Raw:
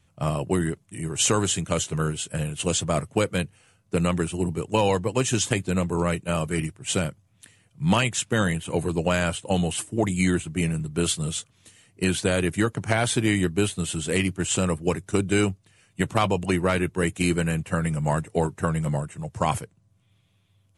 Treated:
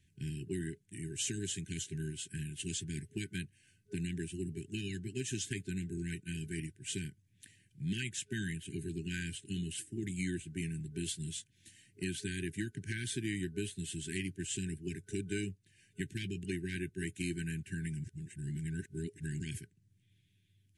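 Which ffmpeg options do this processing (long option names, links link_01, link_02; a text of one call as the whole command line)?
ffmpeg -i in.wav -filter_complex "[0:a]asplit=3[link_01][link_02][link_03];[link_01]atrim=end=18.042[link_04];[link_02]atrim=start=18.038:end=19.402,asetpts=PTS-STARTPTS,areverse[link_05];[link_03]atrim=start=19.398[link_06];[link_04][link_05]acrossfade=duration=0.004:curve1=hsin:curve2=hsin[link_07];[link_07][link_06]acrossfade=duration=0.004:curve1=hsin:curve2=hsin,afftfilt=real='re*(1-between(b*sr/4096,410,1500))':imag='im*(1-between(b*sr/4096,410,1500))':win_size=4096:overlap=0.75,acompressor=threshold=-41dB:ratio=1.5,volume=-6.5dB" out.wav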